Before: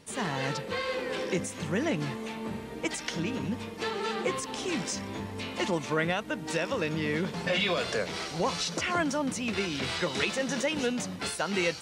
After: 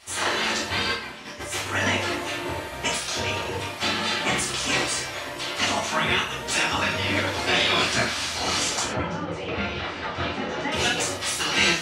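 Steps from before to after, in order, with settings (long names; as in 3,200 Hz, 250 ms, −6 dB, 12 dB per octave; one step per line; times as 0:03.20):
mains-hum notches 50/100/150/200/250/300 Hz
gate on every frequency bin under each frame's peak −10 dB weak
0:00.92–0:01.66: compressor whose output falls as the input rises −46 dBFS, ratio −0.5
0:08.83–0:10.72: head-to-tape spacing loss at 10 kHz 35 dB
reverb whose tail is shaped and stops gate 150 ms falling, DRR −6 dB
level +6 dB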